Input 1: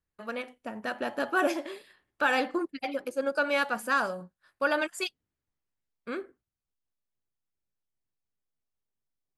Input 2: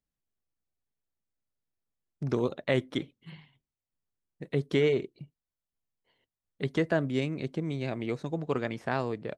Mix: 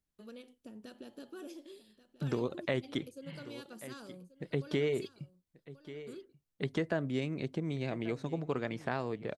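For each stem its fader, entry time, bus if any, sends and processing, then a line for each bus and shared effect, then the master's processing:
-4.5 dB, 0.00 s, no send, echo send -15.5 dB, high-order bell 1.2 kHz -15 dB 2.3 oct; compression 3:1, threshold -43 dBFS, peak gain reduction 12.5 dB
-1.0 dB, 0.00 s, no send, echo send -20 dB, hum notches 50/100 Hz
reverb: none
echo: delay 1135 ms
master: compression 2:1, threshold -32 dBFS, peak gain reduction 6 dB

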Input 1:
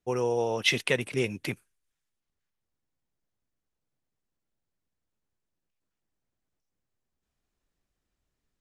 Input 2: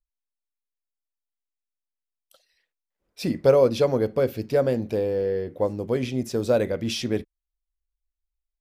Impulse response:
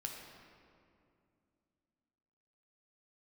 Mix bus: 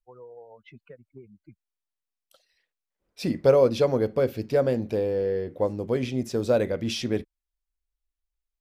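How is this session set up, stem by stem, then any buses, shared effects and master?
-9.5 dB, 0.00 s, no send, expander on every frequency bin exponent 3; low-pass 1 kHz 12 dB/octave; compression, threshold -33 dBFS, peak gain reduction 8 dB
-1.0 dB, 0.00 s, no send, none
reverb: none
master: treble shelf 9.9 kHz -5.5 dB

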